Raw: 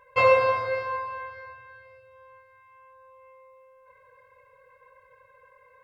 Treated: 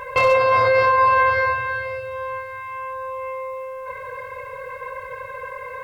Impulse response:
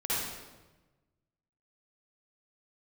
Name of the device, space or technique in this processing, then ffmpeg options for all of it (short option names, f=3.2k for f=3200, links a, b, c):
loud club master: -af "acompressor=threshold=-31dB:ratio=2,asoftclip=type=hard:threshold=-20.5dB,alimiter=level_in=32dB:limit=-1dB:release=50:level=0:latency=1,volume=-8.5dB"